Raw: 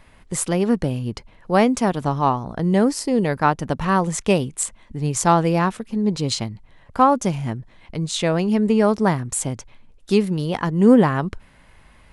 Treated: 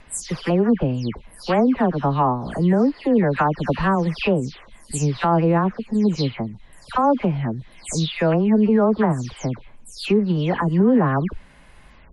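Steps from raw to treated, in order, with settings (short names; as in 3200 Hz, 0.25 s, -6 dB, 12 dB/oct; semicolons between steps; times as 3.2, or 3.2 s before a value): spectral delay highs early, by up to 0.227 s; limiter -11.5 dBFS, peak gain reduction 9 dB; treble ducked by the level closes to 1700 Hz, closed at -16 dBFS; gain +2.5 dB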